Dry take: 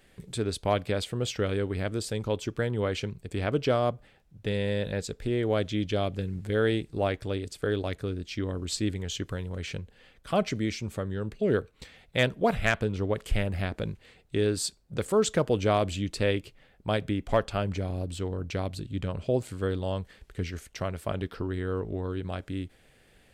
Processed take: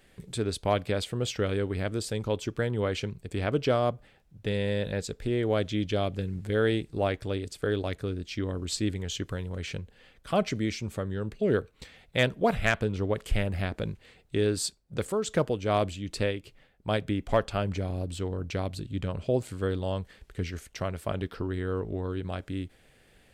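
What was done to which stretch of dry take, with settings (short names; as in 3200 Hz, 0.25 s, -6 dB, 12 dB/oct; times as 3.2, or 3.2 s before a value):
14.64–17.07 tremolo 2.6 Hz, depth 54%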